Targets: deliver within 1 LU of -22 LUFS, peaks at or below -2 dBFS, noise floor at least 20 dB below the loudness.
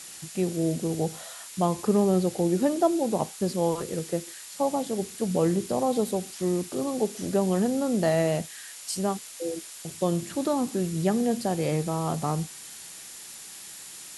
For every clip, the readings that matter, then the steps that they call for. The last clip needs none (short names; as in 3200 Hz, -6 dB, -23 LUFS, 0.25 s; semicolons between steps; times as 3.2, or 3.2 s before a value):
steady tone 7100 Hz; tone level -51 dBFS; noise floor -43 dBFS; noise floor target -47 dBFS; loudness -27.0 LUFS; peak -11.0 dBFS; loudness target -22.0 LUFS
-> notch 7100 Hz, Q 30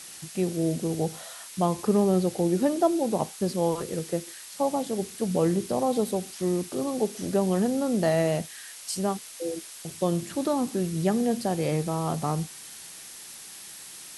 steady tone none; noise floor -44 dBFS; noise floor target -47 dBFS
-> denoiser 6 dB, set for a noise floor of -44 dBFS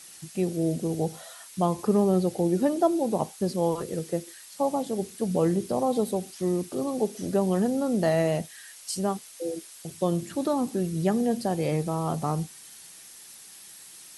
noise floor -48 dBFS; loudness -27.5 LUFS; peak -11.0 dBFS; loudness target -22.0 LUFS
-> gain +5.5 dB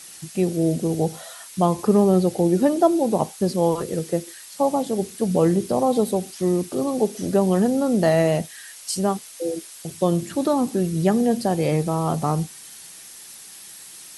loudness -22.0 LUFS; peak -5.5 dBFS; noise floor -42 dBFS